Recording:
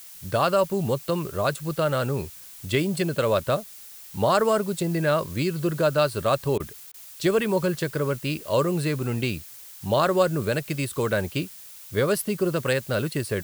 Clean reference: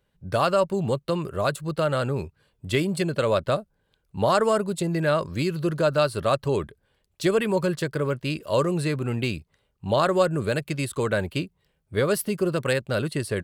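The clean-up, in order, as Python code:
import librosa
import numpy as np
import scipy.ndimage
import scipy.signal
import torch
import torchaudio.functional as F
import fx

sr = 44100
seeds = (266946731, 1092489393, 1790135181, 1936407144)

y = fx.fix_interpolate(x, sr, at_s=(6.58, 6.92), length_ms=19.0)
y = fx.noise_reduce(y, sr, print_start_s=6.7, print_end_s=7.2, reduce_db=26.0)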